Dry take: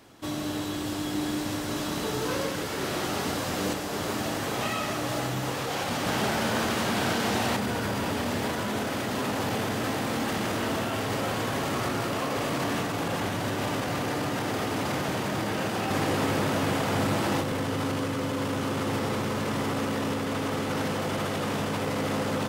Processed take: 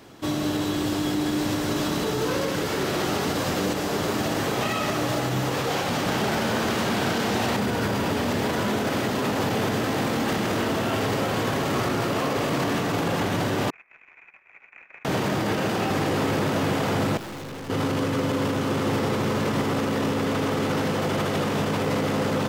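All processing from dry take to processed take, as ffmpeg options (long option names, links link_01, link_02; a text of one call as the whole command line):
ffmpeg -i in.wav -filter_complex "[0:a]asettb=1/sr,asplit=3[link_01][link_02][link_03];[link_01]atrim=end=13.704[link_04];[link_02]atrim=start=13.7:end=15.05,asetpts=PTS-STARTPTS,afade=type=in:duration=0.004:curve=qsin,afade=type=out:start_time=1.346:duration=0.004:curve=qsin,acrusher=bits=3:mode=log:mix=0:aa=0.000001,lowpass=frequency=2300:width_type=q:width=0.5098,lowpass=frequency=2300:width_type=q:width=0.6013,lowpass=frequency=2300:width_type=q:width=0.9,lowpass=frequency=2300:width_type=q:width=2.563,afreqshift=-2700,agate=range=-39dB:threshold=-26dB:ratio=16:release=100:detection=peak[link_05];[link_03]atrim=start=15.046[link_06];[link_04][link_05]acrossfade=duration=0.004:curve1=hsin:curve2=qsin[link_07];[link_07][link_06]acrossfade=duration=0.004:curve1=qsin:curve2=hsin,asettb=1/sr,asplit=3[link_08][link_09][link_10];[link_08]atrim=end=17.174[link_11];[link_09]atrim=start=17.17:end=17.7,asetpts=PTS-STARTPTS,afade=type=in:duration=0.004:curve=qsin,afade=type=out:start_time=0.526:duration=0.004:curve=qsin,highpass=frequency=40:width=0.5412,highpass=frequency=40:width=1.3066,aeval=exprs='(tanh(112*val(0)+0.3)-tanh(0.3))/112':channel_layout=same[link_12];[link_10]atrim=start=17.696[link_13];[link_11][link_12]acrossfade=duration=0.004:curve1=hsin:curve2=qsin[link_14];[link_14][link_13]acrossfade=duration=0.004:curve1=qsin:curve2=hsin,equalizer=frequency=160:width_type=o:width=0.67:gain=3,equalizer=frequency=400:width_type=o:width=0.67:gain=3,equalizer=frequency=10000:width_type=o:width=0.67:gain=-4,alimiter=limit=-21dB:level=0:latency=1,volume=5dB" out.wav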